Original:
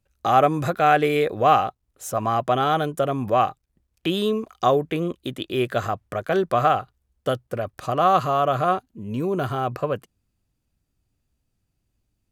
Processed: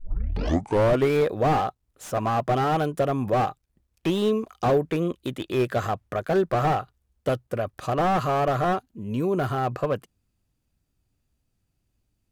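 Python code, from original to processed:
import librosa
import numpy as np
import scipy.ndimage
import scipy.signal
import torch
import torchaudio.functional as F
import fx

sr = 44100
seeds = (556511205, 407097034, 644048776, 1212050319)

y = fx.tape_start_head(x, sr, length_s=1.13)
y = fx.slew_limit(y, sr, full_power_hz=82.0)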